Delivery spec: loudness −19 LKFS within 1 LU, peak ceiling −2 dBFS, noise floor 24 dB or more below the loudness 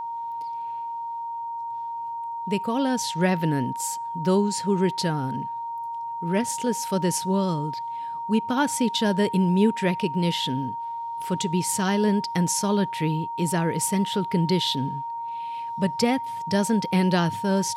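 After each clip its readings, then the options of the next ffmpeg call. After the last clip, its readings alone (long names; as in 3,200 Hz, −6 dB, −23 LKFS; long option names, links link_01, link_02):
interfering tone 930 Hz; level of the tone −29 dBFS; integrated loudness −25.0 LKFS; sample peak −9.0 dBFS; target loudness −19.0 LKFS
→ -af "bandreject=frequency=930:width=30"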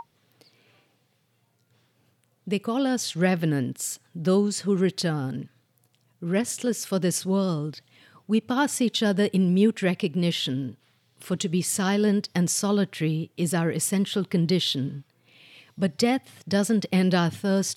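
interfering tone none found; integrated loudness −25.0 LKFS; sample peak −9.5 dBFS; target loudness −19.0 LKFS
→ -af "volume=6dB"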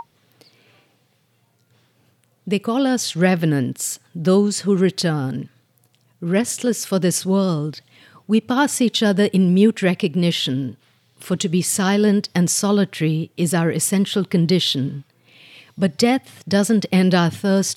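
integrated loudness −19.0 LKFS; sample peak −3.5 dBFS; background noise floor −63 dBFS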